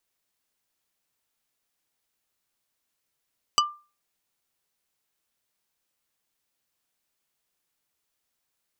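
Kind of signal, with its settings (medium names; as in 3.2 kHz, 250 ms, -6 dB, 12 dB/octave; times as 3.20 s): wood hit plate, lowest mode 1.19 kHz, decay 0.33 s, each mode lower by 1 dB, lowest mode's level -15.5 dB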